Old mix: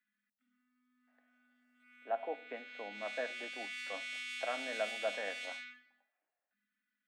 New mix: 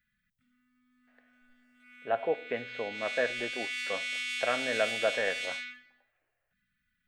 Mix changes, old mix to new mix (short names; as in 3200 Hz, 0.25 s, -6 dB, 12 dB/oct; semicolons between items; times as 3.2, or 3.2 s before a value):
speech +4.5 dB; master: remove rippled Chebyshev high-pass 200 Hz, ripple 9 dB